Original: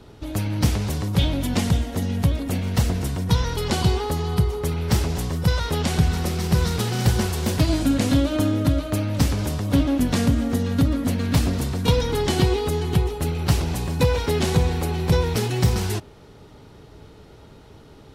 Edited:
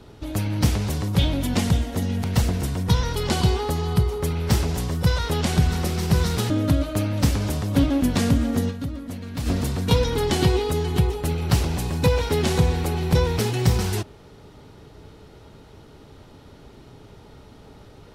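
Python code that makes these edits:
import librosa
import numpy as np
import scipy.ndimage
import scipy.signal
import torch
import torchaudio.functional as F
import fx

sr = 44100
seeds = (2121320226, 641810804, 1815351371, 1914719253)

y = fx.edit(x, sr, fx.cut(start_s=2.24, length_s=0.41),
    fx.cut(start_s=6.91, length_s=1.56),
    fx.fade_down_up(start_s=10.66, length_s=0.79, db=-10.5, fade_s=0.25, curve='exp'), tone=tone)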